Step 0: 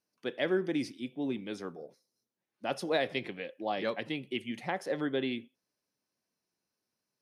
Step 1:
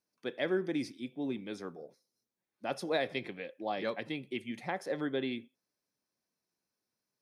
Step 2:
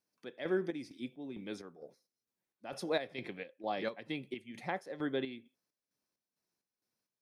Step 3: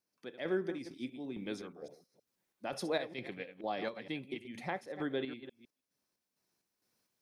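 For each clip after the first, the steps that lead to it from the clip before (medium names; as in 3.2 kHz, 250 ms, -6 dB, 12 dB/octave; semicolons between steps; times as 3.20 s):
band-stop 2.9 kHz, Q 11; trim -2 dB
square tremolo 2.2 Hz, depth 60%, duty 55%; trim -1 dB
chunks repeated in reverse 157 ms, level -11.5 dB; recorder AGC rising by 5.3 dB/s; trim -1 dB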